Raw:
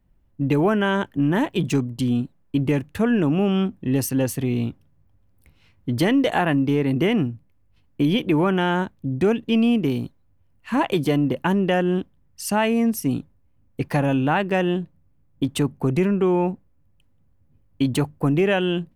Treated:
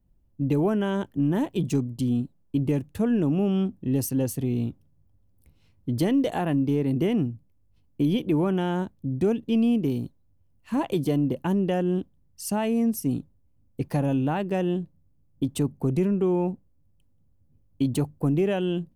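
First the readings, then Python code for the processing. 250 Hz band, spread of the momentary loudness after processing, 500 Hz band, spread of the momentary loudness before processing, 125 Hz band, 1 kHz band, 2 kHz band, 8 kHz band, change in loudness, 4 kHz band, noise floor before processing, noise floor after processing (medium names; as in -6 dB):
-3.0 dB, 8 LU, -4.5 dB, 9 LU, -3.0 dB, -8.0 dB, -12.5 dB, -4.0 dB, -4.0 dB, -9.0 dB, -60 dBFS, -62 dBFS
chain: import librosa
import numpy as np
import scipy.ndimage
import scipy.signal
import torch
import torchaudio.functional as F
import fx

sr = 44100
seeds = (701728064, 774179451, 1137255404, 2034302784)

y = fx.peak_eq(x, sr, hz=1800.0, db=-10.5, octaves=2.2)
y = F.gain(torch.from_numpy(y), -2.5).numpy()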